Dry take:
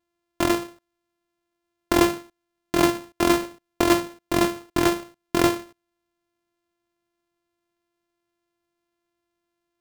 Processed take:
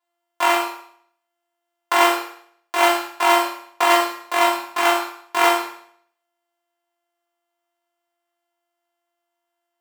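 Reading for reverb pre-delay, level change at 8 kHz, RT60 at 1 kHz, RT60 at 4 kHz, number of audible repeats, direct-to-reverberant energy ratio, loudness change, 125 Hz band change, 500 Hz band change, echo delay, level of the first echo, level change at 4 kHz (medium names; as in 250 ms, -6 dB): 8 ms, +2.5 dB, 0.60 s, 0.60 s, no echo, -5.5 dB, +4.0 dB, under -25 dB, +2.0 dB, no echo, no echo, +6.5 dB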